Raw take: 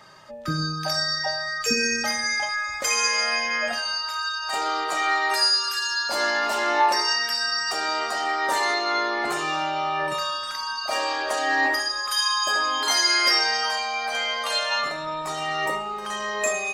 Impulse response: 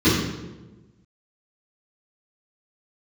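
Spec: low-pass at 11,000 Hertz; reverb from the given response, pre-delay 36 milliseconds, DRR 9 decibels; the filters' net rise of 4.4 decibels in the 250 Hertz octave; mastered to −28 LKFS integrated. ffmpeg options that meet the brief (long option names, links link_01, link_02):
-filter_complex "[0:a]lowpass=11000,equalizer=frequency=250:width_type=o:gain=6,asplit=2[link_01][link_02];[1:a]atrim=start_sample=2205,adelay=36[link_03];[link_02][link_03]afir=irnorm=-1:irlink=0,volume=-30dB[link_04];[link_01][link_04]amix=inputs=2:normalize=0,volume=-6dB"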